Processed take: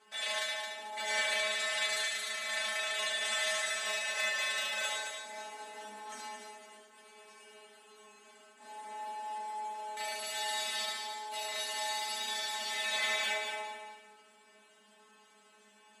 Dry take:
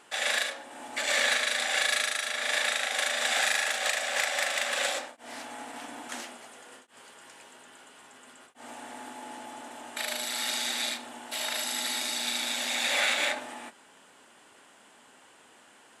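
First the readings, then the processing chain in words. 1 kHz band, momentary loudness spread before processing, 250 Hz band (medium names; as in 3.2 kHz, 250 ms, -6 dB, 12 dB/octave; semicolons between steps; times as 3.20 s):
-2.5 dB, 17 LU, -14.0 dB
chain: high-pass 94 Hz; treble shelf 8.9 kHz -4.5 dB; inharmonic resonator 210 Hz, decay 0.43 s, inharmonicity 0.002; multi-head delay 73 ms, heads first and third, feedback 45%, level -6 dB; trim +7.5 dB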